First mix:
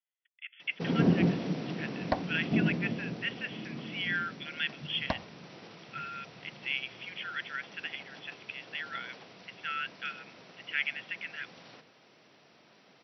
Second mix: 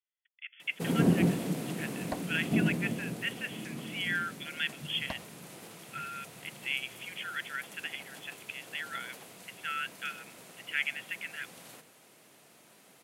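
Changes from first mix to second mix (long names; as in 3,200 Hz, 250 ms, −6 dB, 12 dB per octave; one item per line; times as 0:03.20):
second sound −7.5 dB
master: remove linear-phase brick-wall low-pass 5,900 Hz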